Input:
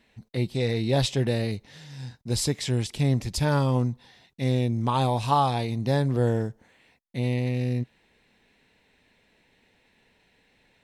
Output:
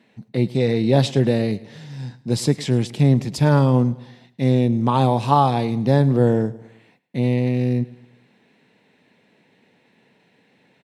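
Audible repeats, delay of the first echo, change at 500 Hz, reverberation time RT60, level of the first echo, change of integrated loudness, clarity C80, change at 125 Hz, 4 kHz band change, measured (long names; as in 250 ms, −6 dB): 3, 107 ms, +7.0 dB, no reverb audible, −20.0 dB, +6.5 dB, no reverb audible, +6.0 dB, +1.0 dB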